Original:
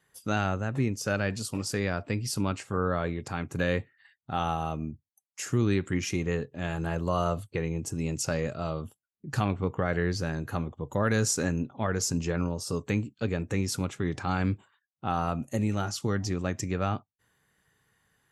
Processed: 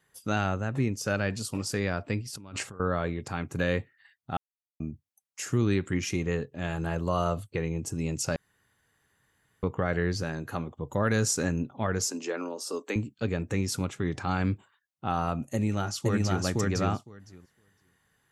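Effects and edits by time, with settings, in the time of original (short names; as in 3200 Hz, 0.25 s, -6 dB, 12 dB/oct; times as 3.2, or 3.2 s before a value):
2.21–2.8 negative-ratio compressor -41 dBFS
4.37–4.8 mute
8.36–9.63 room tone
10.23–10.79 HPF 150 Hz 6 dB/oct
12.07–12.96 steep high-pass 260 Hz
15.54–16.43 echo throw 0.51 s, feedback 10%, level 0 dB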